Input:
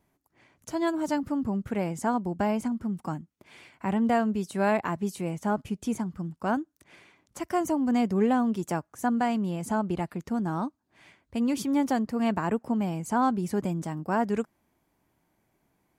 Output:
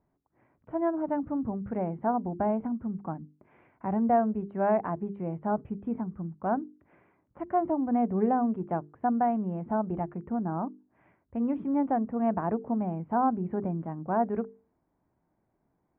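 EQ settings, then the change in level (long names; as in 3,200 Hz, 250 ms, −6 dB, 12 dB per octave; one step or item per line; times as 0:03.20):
Gaussian smoothing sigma 5.6 samples
dynamic equaliser 710 Hz, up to +6 dB, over −43 dBFS, Q 3.2
mains-hum notches 50/100/150/200/250/300/350/400/450 Hz
−1.5 dB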